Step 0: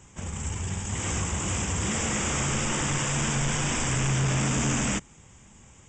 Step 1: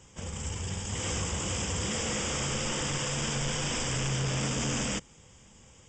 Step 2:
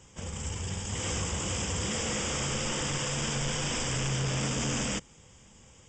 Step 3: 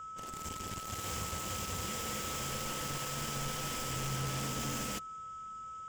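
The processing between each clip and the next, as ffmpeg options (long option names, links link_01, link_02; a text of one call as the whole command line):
ffmpeg -i in.wav -af "equalizer=frequency=500:width_type=o:width=0.33:gain=8,equalizer=frequency=3150:width_type=o:width=0.33:gain=6,equalizer=frequency=5000:width_type=o:width=0.33:gain=9,alimiter=limit=-19.5dB:level=0:latency=1:release=22,volume=-4dB" out.wav
ffmpeg -i in.wav -af anull out.wav
ffmpeg -i in.wav -af "aeval=exprs='0.0708*(cos(1*acos(clip(val(0)/0.0708,-1,1)))-cos(1*PI/2))+0.0224*(cos(7*acos(clip(val(0)/0.0708,-1,1)))-cos(7*PI/2))':channel_layout=same,aeval=exprs='val(0)+0.02*sin(2*PI*1300*n/s)':channel_layout=same,volume=-8.5dB" out.wav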